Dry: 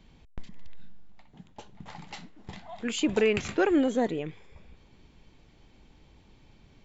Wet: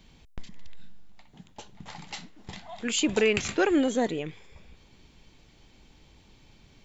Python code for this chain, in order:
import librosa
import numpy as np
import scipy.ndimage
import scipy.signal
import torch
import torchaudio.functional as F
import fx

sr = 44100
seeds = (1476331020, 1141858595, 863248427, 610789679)

y = fx.high_shelf(x, sr, hz=2900.0, db=9.0)